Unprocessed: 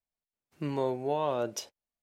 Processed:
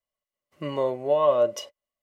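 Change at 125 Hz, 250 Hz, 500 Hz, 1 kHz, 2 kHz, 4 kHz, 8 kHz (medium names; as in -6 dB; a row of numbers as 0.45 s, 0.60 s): -1.0 dB, 0.0 dB, +9.5 dB, +5.0 dB, +2.0 dB, +4.5 dB, no reading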